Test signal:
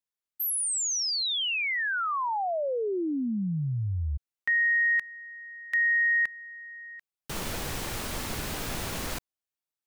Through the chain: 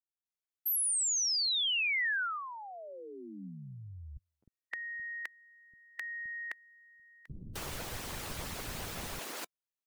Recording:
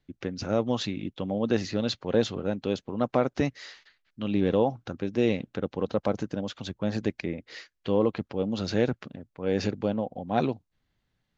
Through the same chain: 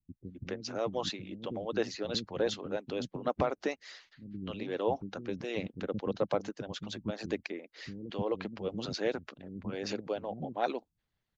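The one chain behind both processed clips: dynamic EQ 190 Hz, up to +4 dB, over -45 dBFS, Q 7.6; harmonic-percussive split harmonic -15 dB; bands offset in time lows, highs 0.26 s, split 260 Hz; gain -2 dB

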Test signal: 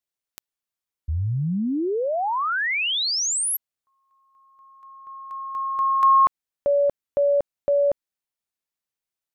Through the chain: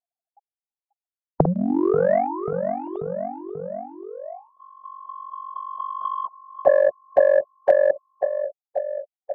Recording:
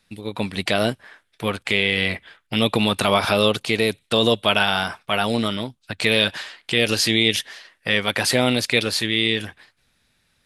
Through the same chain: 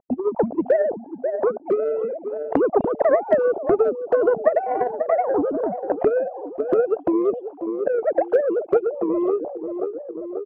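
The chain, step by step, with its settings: sine-wave speech; elliptic low-pass 690 Hz, stop band 60 dB; bell 290 Hz -4.5 dB 0.72 oct; on a send: feedback echo 0.537 s, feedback 47%, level -17 dB; on the sum: transient shaper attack +8 dB, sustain -5 dB; low shelf 210 Hz -5 dB; in parallel at +1.5 dB: compressor, threshold -29 dBFS; on the sum: spectral compressor 2:1

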